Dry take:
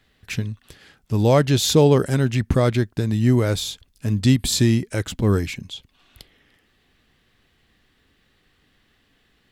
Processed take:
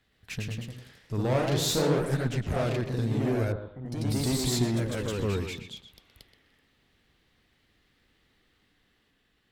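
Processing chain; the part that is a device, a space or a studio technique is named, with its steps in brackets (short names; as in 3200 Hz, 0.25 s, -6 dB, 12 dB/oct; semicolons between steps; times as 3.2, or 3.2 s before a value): rockabilly slapback (tube stage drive 17 dB, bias 0.4; tape echo 0.125 s, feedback 30%, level -7 dB, low-pass 3300 Hz); 3.52–4.16 inverse Chebyshev low-pass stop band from 6400 Hz, stop band 70 dB; echoes that change speed 0.12 s, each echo +1 st, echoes 3; gain -7 dB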